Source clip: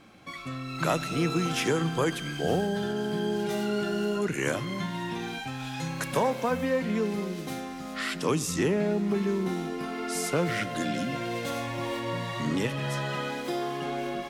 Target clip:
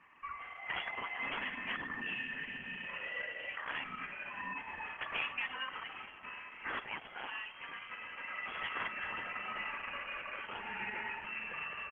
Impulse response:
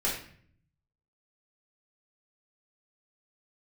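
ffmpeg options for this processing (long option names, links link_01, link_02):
-filter_complex "[0:a]highpass=1200,aecho=1:1:1.3:0.49,acontrast=35,aeval=exprs='(mod(9.44*val(0)+1,2)-1)/9.44':channel_layout=same,asplit=2[link_01][link_02];[link_02]adelay=120,highpass=300,lowpass=3400,asoftclip=type=hard:threshold=-29.5dB,volume=-17dB[link_03];[link_01][link_03]amix=inputs=2:normalize=0,afreqshift=16,atempo=1.2,lowpass=frequency=2900:width_type=q:width=0.5098,lowpass=frequency=2900:width_type=q:width=0.6013,lowpass=frequency=2900:width_type=q:width=0.9,lowpass=frequency=2900:width_type=q:width=2.563,afreqshift=-3400,volume=-7dB" -ar 48000 -c:a libopus -b:a 10k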